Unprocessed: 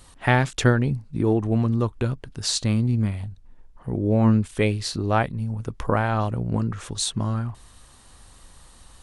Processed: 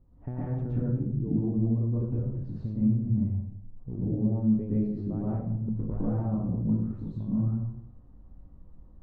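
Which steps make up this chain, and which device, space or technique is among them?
television next door (compression 4:1, threshold -22 dBFS, peak gain reduction 9 dB; low-pass 330 Hz 12 dB/octave; reverberation RT60 0.75 s, pre-delay 110 ms, DRR -8.5 dB); trim -8 dB

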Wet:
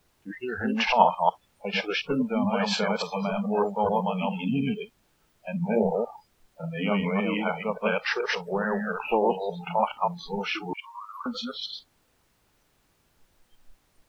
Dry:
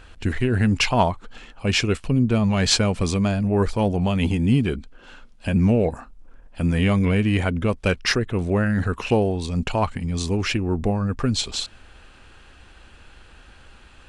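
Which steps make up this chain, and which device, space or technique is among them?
chunks repeated in reverse 144 ms, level -0.5 dB; horn gramophone (band-pass 240–3100 Hz; peaking EQ 880 Hz +9 dB 0.22 oct; wow and flutter; pink noise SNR 11 dB); spectral noise reduction 29 dB; 10.73–11.26 s: Chebyshev high-pass 960 Hz, order 10; trim -4 dB

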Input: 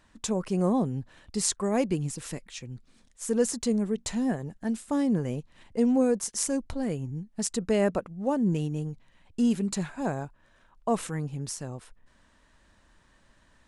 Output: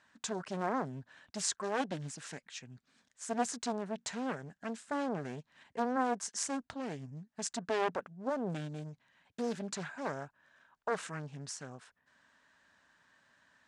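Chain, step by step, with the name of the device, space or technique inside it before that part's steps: full-range speaker at full volume (loudspeaker Doppler distortion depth 0.92 ms; cabinet simulation 190–8100 Hz, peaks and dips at 210 Hz -5 dB, 340 Hz -9 dB, 500 Hz -5 dB, 1.6 kHz +7 dB); trim -4.5 dB

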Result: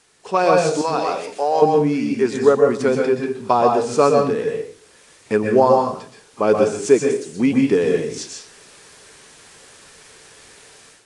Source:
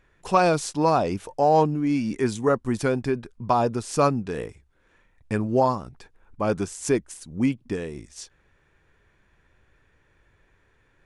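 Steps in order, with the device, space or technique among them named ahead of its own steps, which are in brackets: 0.81–1.62 s: high-pass 1.4 kHz 6 dB/octave; filmed off a television (band-pass 210–7800 Hz; peaking EQ 430 Hz +8 dB 0.32 oct; reverberation RT60 0.45 s, pre-delay 116 ms, DRR 1.5 dB; white noise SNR 32 dB; level rider gain up to 12.5 dB; trim -1 dB; AAC 48 kbps 22.05 kHz)

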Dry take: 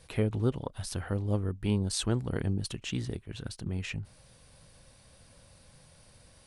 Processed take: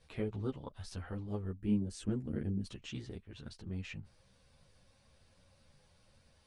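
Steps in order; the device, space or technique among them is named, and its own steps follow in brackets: 1.59–2.66 s: graphic EQ 250/1000/4000 Hz +8/-10/-11 dB; string-machine ensemble chorus (three-phase chorus; low-pass 6.6 kHz 12 dB/octave); trim -5.5 dB

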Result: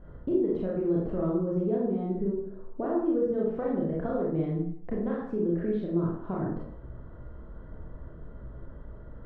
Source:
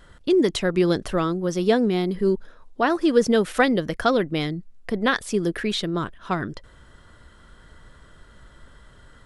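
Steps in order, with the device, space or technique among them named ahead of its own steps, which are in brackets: television next door (compression 4:1, threshold -33 dBFS, peak gain reduction 17.5 dB; low-pass 580 Hz 12 dB/octave; reverberation RT60 0.65 s, pre-delay 26 ms, DRR -5 dB); trim +2 dB

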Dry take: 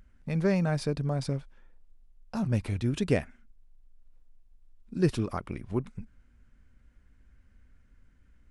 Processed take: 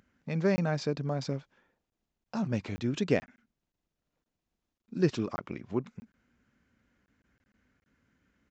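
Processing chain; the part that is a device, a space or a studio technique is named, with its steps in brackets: call with lost packets (high-pass 160 Hz 12 dB/octave; resampled via 16 kHz; lost packets)

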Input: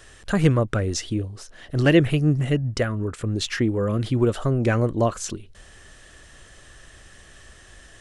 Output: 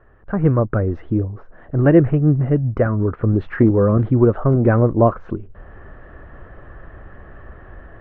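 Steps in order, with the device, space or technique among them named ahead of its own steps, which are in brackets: action camera in a waterproof case (low-pass 1.4 kHz 24 dB/octave; level rider gain up to 12 dB; trim -1 dB; AAC 48 kbps 48 kHz)

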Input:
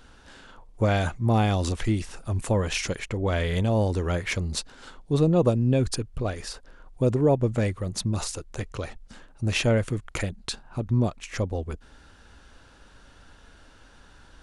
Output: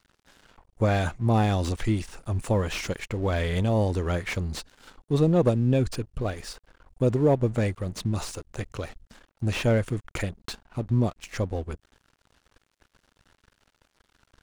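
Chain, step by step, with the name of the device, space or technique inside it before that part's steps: early transistor amplifier (crossover distortion -47.5 dBFS; slew-rate limiter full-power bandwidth 110 Hz)

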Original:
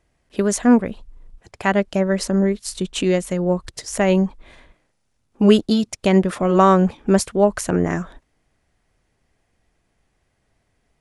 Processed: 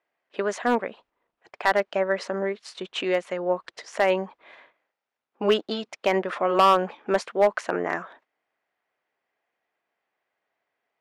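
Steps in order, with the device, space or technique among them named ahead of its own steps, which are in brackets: walkie-talkie (band-pass 590–2700 Hz; hard clipper -13 dBFS, distortion -12 dB; gate -57 dBFS, range -7 dB); trim +1.5 dB

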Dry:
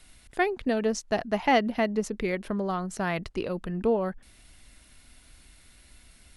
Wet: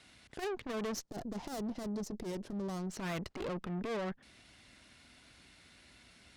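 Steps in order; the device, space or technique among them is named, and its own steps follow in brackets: valve radio (band-pass 110–5800 Hz; valve stage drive 38 dB, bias 0.7; transformer saturation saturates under 110 Hz); 1.03–2.87 s: FFT filter 340 Hz 0 dB, 2.5 kHz -13 dB, 5.3 kHz 0 dB; trim +3.5 dB

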